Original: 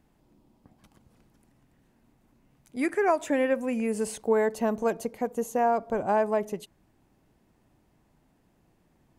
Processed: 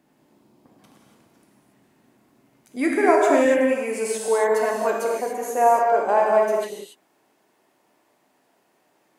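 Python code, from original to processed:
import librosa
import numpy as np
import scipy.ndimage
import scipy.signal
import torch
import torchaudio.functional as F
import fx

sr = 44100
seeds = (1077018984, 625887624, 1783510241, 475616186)

y = fx.highpass(x, sr, hz=fx.steps((0.0, 190.0), (3.46, 440.0)), slope=12)
y = fx.rev_gated(y, sr, seeds[0], gate_ms=310, shape='flat', drr_db=-2.5)
y = y * 10.0 ** (3.5 / 20.0)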